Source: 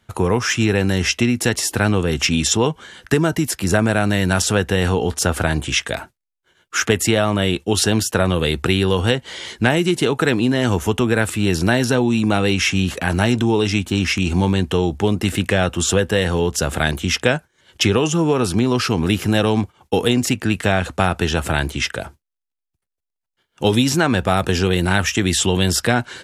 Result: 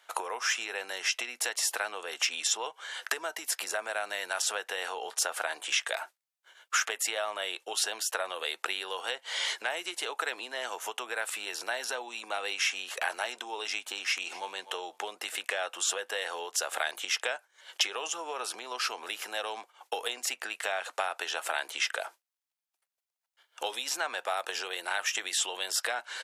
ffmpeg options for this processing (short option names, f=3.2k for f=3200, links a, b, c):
-filter_complex "[0:a]asplit=2[a][b];[b]afade=t=in:st=14.06:d=0.01,afade=t=out:st=14.54:d=0.01,aecho=0:1:250|500:0.133352|0.0200028[c];[a][c]amix=inputs=2:normalize=0,acompressor=threshold=-28dB:ratio=6,highpass=f=600:w=0.5412,highpass=f=600:w=1.3066,volume=2.5dB"